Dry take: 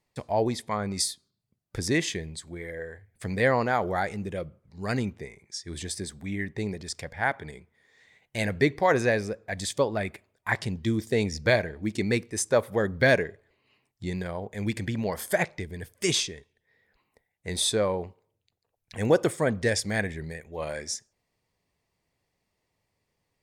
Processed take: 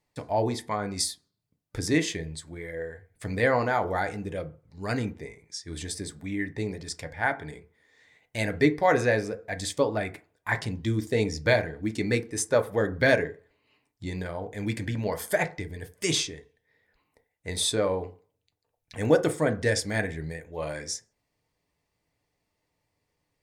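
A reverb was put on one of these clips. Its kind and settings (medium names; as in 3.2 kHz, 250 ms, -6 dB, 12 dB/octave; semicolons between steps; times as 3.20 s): FDN reverb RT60 0.35 s, low-frequency decay 0.9×, high-frequency decay 0.4×, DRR 6.5 dB; trim -1 dB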